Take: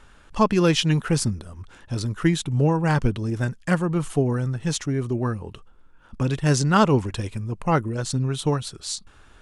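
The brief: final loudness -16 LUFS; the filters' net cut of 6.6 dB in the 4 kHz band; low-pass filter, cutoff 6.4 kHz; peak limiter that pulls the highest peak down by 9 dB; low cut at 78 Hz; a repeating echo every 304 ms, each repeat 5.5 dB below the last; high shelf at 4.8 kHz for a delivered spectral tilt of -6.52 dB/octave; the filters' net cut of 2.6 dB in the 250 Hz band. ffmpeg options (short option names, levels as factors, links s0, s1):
-af "highpass=78,lowpass=6400,equalizer=f=250:t=o:g=-4,equalizer=f=4000:t=o:g=-7,highshelf=f=4800:g=-3,alimiter=limit=0.15:level=0:latency=1,aecho=1:1:304|608|912|1216|1520|1824|2128:0.531|0.281|0.149|0.079|0.0419|0.0222|0.0118,volume=3.16"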